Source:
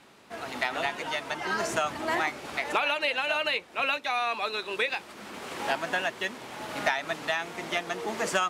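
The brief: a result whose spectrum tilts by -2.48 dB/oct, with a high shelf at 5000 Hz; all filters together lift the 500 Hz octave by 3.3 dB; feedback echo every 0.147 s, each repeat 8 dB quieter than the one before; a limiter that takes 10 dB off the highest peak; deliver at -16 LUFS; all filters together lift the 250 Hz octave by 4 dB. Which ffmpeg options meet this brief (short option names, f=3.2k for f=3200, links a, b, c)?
-af "equalizer=f=250:t=o:g=4,equalizer=f=500:t=o:g=3.5,highshelf=f=5k:g=4.5,alimiter=limit=-20dB:level=0:latency=1,aecho=1:1:147|294|441|588|735:0.398|0.159|0.0637|0.0255|0.0102,volume=14.5dB"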